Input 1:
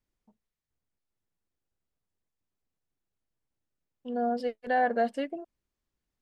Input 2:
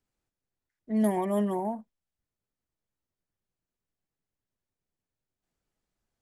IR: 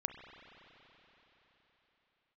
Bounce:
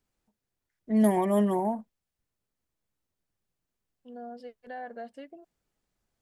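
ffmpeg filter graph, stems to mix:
-filter_complex "[0:a]acompressor=threshold=-32dB:ratio=1.5,volume=-10.5dB[link_01];[1:a]volume=3dB[link_02];[link_01][link_02]amix=inputs=2:normalize=0"

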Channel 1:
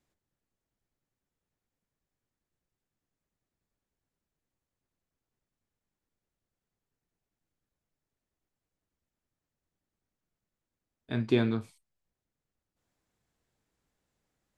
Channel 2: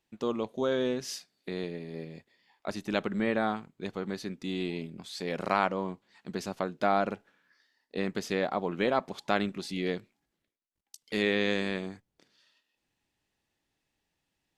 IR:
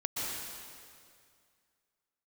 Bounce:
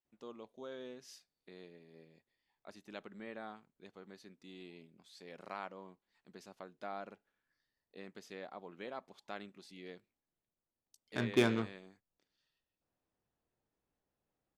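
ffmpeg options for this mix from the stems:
-filter_complex "[0:a]adynamicsmooth=sensitivity=6:basefreq=950,lowshelf=frequency=370:gain=-11.5,adelay=50,volume=2.5dB[link_01];[1:a]lowshelf=frequency=160:gain=-9.5,volume=-17dB[link_02];[link_01][link_02]amix=inputs=2:normalize=0"

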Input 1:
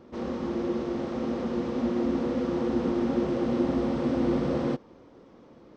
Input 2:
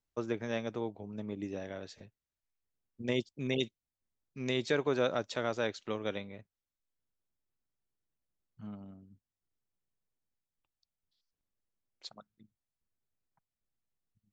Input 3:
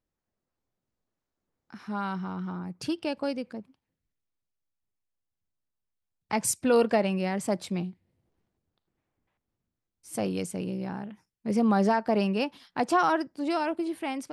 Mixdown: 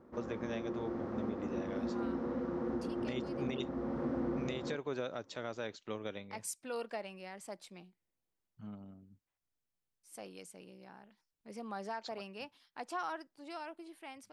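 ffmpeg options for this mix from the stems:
ffmpeg -i stem1.wav -i stem2.wav -i stem3.wav -filter_complex "[0:a]highshelf=frequency=2200:width_type=q:width=1.5:gain=-9,volume=-8.5dB[link_01];[1:a]volume=-2.5dB[link_02];[2:a]highpass=frequency=700:poles=1,volume=-13dB[link_03];[link_01][link_02][link_03]amix=inputs=3:normalize=0,alimiter=level_in=3dB:limit=-24dB:level=0:latency=1:release=436,volume=-3dB" out.wav

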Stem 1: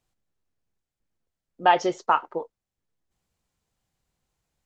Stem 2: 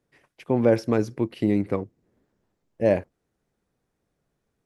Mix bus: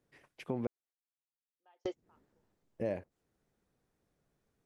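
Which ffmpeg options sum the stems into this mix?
ffmpeg -i stem1.wav -i stem2.wav -filter_complex "[0:a]highpass=frequency=290:width=0.5412,highpass=frequency=290:width=1.3066,volume=-4.5dB[link_01];[1:a]volume=-3dB,asplit=3[link_02][link_03][link_04];[link_02]atrim=end=0.67,asetpts=PTS-STARTPTS,afade=type=out:start_time=0.666:duration=0.004:curve=hsin[link_05];[link_03]atrim=start=0.67:end=1.85,asetpts=PTS-STARTPTS,volume=0[link_06];[link_04]atrim=start=1.85,asetpts=PTS-STARTPTS,afade=type=in:duration=0.004:curve=hsin[link_07];[link_05][link_06][link_07]concat=n=3:v=0:a=1,asplit=2[link_08][link_09];[link_09]apad=whole_len=205213[link_10];[link_01][link_10]sidechaingate=range=-45dB:threshold=-55dB:ratio=16:detection=peak[link_11];[link_11][link_08]amix=inputs=2:normalize=0,acompressor=threshold=-38dB:ratio=2.5" out.wav

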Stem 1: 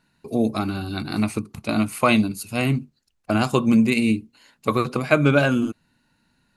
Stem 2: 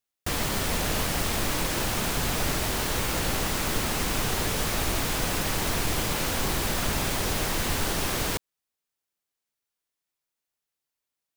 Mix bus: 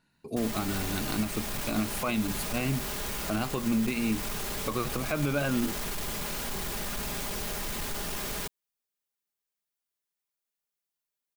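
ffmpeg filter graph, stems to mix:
ffmpeg -i stem1.wav -i stem2.wav -filter_complex "[0:a]volume=-5.5dB[link_01];[1:a]highshelf=frequency=11000:gain=5.5,aecho=1:1:4.9:0.5,asoftclip=type=tanh:threshold=-22.5dB,adelay=100,volume=-6dB[link_02];[link_01][link_02]amix=inputs=2:normalize=0,alimiter=limit=-18.5dB:level=0:latency=1:release=149" out.wav

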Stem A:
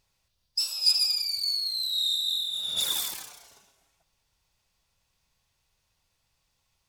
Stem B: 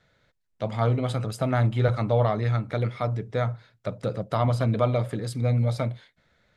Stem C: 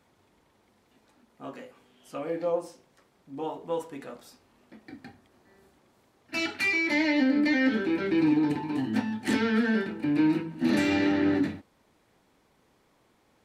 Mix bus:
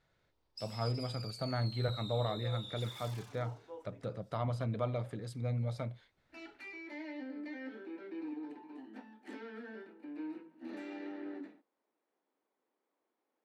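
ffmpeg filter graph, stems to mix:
ffmpeg -i stem1.wav -i stem2.wav -i stem3.wav -filter_complex "[0:a]lowpass=frequency=1800:poles=1,acompressor=threshold=-41dB:ratio=5,volume=-4.5dB[link_01];[1:a]volume=-12dB[link_02];[2:a]highpass=frequency=280:width=0.5412,highpass=frequency=280:width=1.3066,highshelf=frequency=2400:gain=-11,volume=-17dB[link_03];[link_01][link_02][link_03]amix=inputs=3:normalize=0,highshelf=frequency=8100:gain=-4" out.wav

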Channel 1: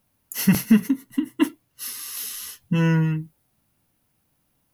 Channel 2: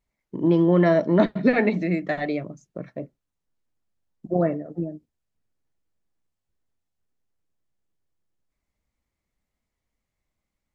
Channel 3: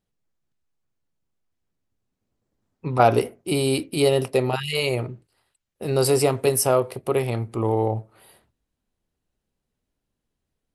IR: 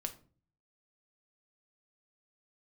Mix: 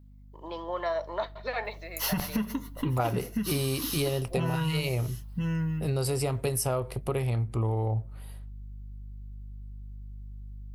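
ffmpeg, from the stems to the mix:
-filter_complex "[0:a]adelay=1650,volume=0dB,asplit=3[link_01][link_02][link_03];[link_02]volume=-15.5dB[link_04];[link_03]volume=-12dB[link_05];[1:a]highpass=690,aemphasis=mode=production:type=50fm,volume=-9.5dB,asplit=2[link_06][link_07];[link_07]volume=-9.5dB[link_08];[2:a]volume=-2.5dB[link_09];[link_01][link_06]amix=inputs=2:normalize=0,equalizer=frequency=125:width_type=o:width=1:gain=-10,equalizer=frequency=250:width_type=o:width=1:gain=-7,equalizer=frequency=500:width_type=o:width=1:gain=4,equalizer=frequency=1000:width_type=o:width=1:gain=10,equalizer=frequency=2000:width_type=o:width=1:gain=-7,equalizer=frequency=4000:width_type=o:width=1:gain=7,equalizer=frequency=8000:width_type=o:width=1:gain=-10,acompressor=threshold=-24dB:ratio=6,volume=0dB[link_10];[3:a]atrim=start_sample=2205[link_11];[link_04][link_08]amix=inputs=2:normalize=0[link_12];[link_12][link_11]afir=irnorm=-1:irlink=0[link_13];[link_05]aecho=0:1:1006:1[link_14];[link_09][link_10][link_13][link_14]amix=inputs=4:normalize=0,aeval=exprs='val(0)+0.00282*(sin(2*PI*50*n/s)+sin(2*PI*2*50*n/s)/2+sin(2*PI*3*50*n/s)/3+sin(2*PI*4*50*n/s)/4+sin(2*PI*5*50*n/s)/5)':channel_layout=same,asubboost=boost=4:cutoff=140,acompressor=threshold=-25dB:ratio=6"

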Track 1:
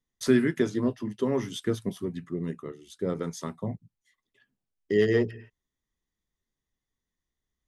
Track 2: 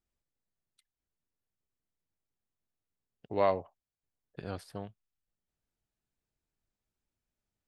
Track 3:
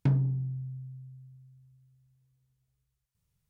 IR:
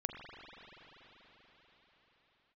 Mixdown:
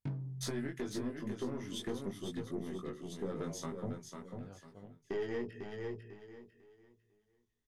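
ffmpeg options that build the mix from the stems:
-filter_complex "[0:a]acompressor=threshold=-27dB:ratio=6,aeval=exprs='(tanh(17.8*val(0)+0.3)-tanh(0.3))/17.8':channel_layout=same,adelay=200,volume=0.5dB,asplit=2[link_01][link_02];[link_02]volume=-6.5dB[link_03];[1:a]highshelf=frequency=5000:gain=-11,alimiter=level_in=2dB:limit=-24dB:level=0:latency=1,volume=-2dB,volume=-12.5dB[link_04];[2:a]volume=-9.5dB[link_05];[link_03]aecho=0:1:498|996|1494|1992:1|0.27|0.0729|0.0197[link_06];[link_01][link_04][link_05][link_06]amix=inputs=4:normalize=0,flanger=delay=19.5:depth=2.1:speed=0.84,alimiter=level_in=4.5dB:limit=-24dB:level=0:latency=1:release=390,volume=-4.5dB"

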